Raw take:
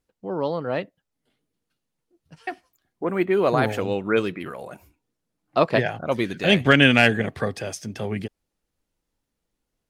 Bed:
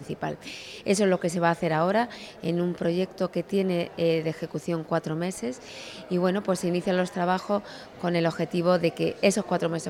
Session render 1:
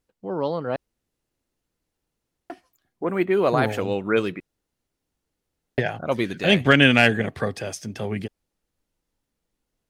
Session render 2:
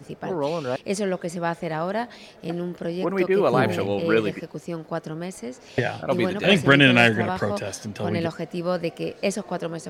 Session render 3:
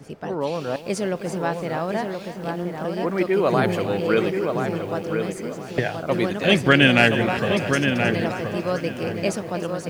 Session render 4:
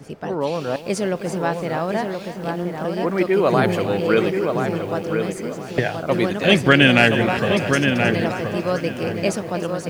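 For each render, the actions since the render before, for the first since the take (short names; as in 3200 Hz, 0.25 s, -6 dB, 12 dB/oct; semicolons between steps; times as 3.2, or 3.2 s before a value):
0.76–2.5 room tone; 4.4–5.78 room tone
add bed -3 dB
darkening echo 1.026 s, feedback 25%, low-pass 2300 Hz, level -5 dB; lo-fi delay 0.313 s, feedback 55%, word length 7-bit, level -13 dB
gain +2.5 dB; limiter -1 dBFS, peak gain reduction 1.5 dB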